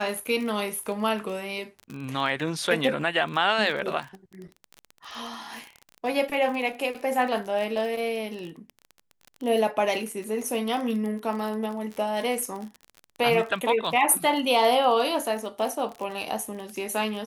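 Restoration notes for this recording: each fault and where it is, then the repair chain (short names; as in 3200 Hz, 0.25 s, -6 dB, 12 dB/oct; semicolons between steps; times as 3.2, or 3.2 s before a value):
crackle 28/s -31 dBFS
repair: de-click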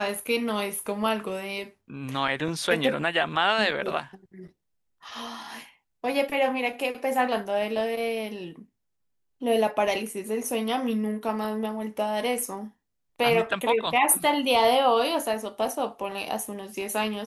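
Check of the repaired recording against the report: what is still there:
none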